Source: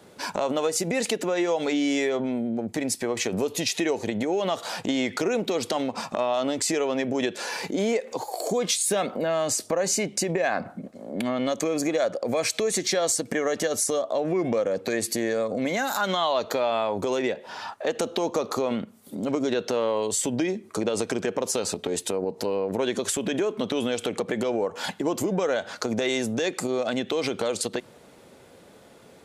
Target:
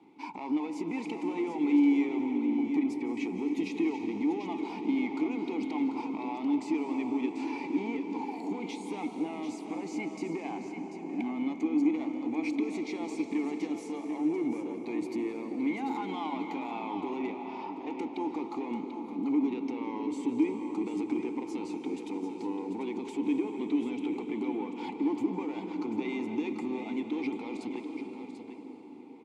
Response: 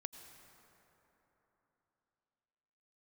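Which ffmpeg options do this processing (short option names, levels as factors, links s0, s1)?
-filter_complex "[0:a]asoftclip=type=tanh:threshold=0.0944,asplit=3[s0][s1][s2];[s0]bandpass=f=300:t=q:w=8,volume=1[s3];[s1]bandpass=f=870:t=q:w=8,volume=0.501[s4];[s2]bandpass=f=2240:t=q:w=8,volume=0.355[s5];[s3][s4][s5]amix=inputs=3:normalize=0,highshelf=f=12000:g=-3,aecho=1:1:740:0.355[s6];[1:a]atrim=start_sample=2205,asetrate=24696,aresample=44100[s7];[s6][s7]afir=irnorm=-1:irlink=0,volume=2.24"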